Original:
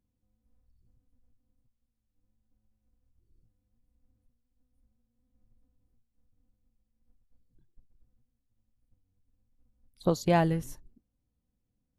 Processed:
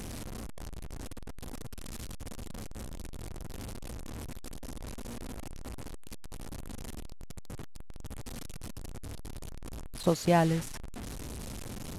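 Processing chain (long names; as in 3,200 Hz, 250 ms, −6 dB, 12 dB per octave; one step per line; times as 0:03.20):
linear delta modulator 64 kbit/s, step −34 dBFS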